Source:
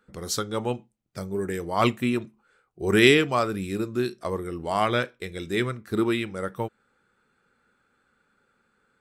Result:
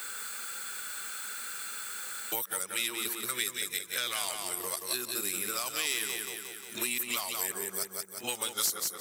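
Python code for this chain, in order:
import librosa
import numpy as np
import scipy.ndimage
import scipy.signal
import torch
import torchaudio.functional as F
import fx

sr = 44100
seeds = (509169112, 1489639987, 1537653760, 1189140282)

p1 = x[::-1].copy()
p2 = fx.high_shelf(p1, sr, hz=8900.0, db=11.0)
p3 = fx.over_compress(p2, sr, threshold_db=-25.0, ratio=-1.0)
p4 = p2 + (p3 * librosa.db_to_amplitude(2.0))
p5 = 10.0 ** (-8.5 / 20.0) * np.tanh(p4 / 10.0 ** (-8.5 / 20.0))
p6 = np.diff(p5, prepend=0.0)
p7 = 10.0 ** (-10.5 / 20.0) * (np.abs((p6 / 10.0 ** (-10.5 / 20.0) + 3.0) % 4.0 - 2.0) - 1.0)
p8 = fx.echo_feedback(p7, sr, ms=178, feedback_pct=33, wet_db=-6.0)
y = fx.band_squash(p8, sr, depth_pct=100)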